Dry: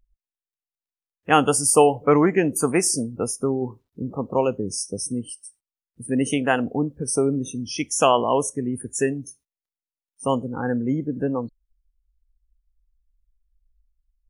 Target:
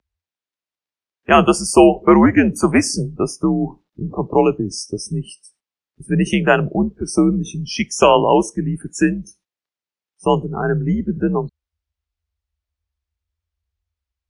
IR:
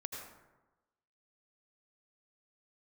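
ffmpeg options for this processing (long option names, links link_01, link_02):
-filter_complex "[0:a]acrossover=split=200 6100:gain=0.0631 1 0.126[link_01][link_02][link_03];[link_01][link_02][link_03]amix=inputs=3:normalize=0,afreqshift=-88,apsyclip=9dB,volume=-1.5dB"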